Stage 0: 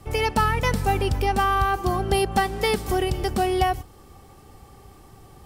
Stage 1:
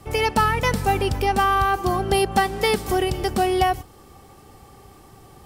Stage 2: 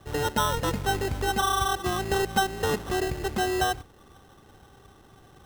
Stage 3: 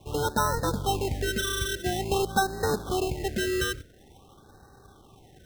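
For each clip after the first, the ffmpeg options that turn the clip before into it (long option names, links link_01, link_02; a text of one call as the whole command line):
ffmpeg -i in.wav -af "lowshelf=frequency=87:gain=-7,volume=2.5dB" out.wav
ffmpeg -i in.wav -af "acrusher=samples=19:mix=1:aa=0.000001,volume=-6dB" out.wav
ffmpeg -i in.wav -af "afftfilt=real='re*(1-between(b*sr/1024,830*pow(2700/830,0.5+0.5*sin(2*PI*0.48*pts/sr))/1.41,830*pow(2700/830,0.5+0.5*sin(2*PI*0.48*pts/sr))*1.41))':imag='im*(1-between(b*sr/1024,830*pow(2700/830,0.5+0.5*sin(2*PI*0.48*pts/sr))/1.41,830*pow(2700/830,0.5+0.5*sin(2*PI*0.48*pts/sr))*1.41))':win_size=1024:overlap=0.75" out.wav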